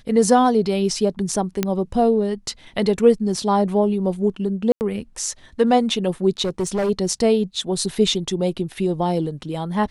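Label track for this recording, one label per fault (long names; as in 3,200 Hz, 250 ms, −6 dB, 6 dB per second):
1.630000	1.630000	click −6 dBFS
4.720000	4.810000	drop-out 89 ms
6.420000	6.900000	clipping −18 dBFS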